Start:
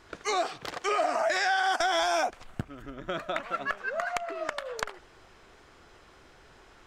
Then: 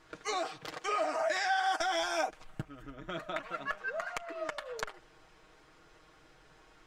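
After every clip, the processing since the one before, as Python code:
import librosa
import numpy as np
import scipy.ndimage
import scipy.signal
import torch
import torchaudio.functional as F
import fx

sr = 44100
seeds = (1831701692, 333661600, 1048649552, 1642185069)

y = x + 0.65 * np.pad(x, (int(6.4 * sr / 1000.0), 0))[:len(x)]
y = y * 10.0 ** (-6.5 / 20.0)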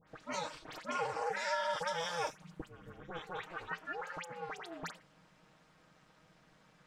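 y = fx.dispersion(x, sr, late='highs', ms=78.0, hz=2000.0)
y = y * np.sin(2.0 * np.pi * 170.0 * np.arange(len(y)) / sr)
y = y * 10.0 ** (-2.0 / 20.0)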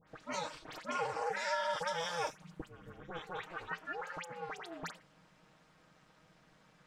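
y = x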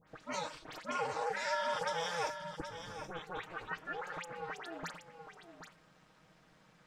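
y = x + 10.0 ** (-9.5 / 20.0) * np.pad(x, (int(773 * sr / 1000.0), 0))[:len(x)]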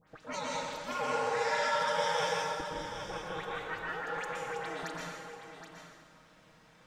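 y = fx.rev_plate(x, sr, seeds[0], rt60_s=1.3, hf_ratio=1.0, predelay_ms=105, drr_db=-3.5)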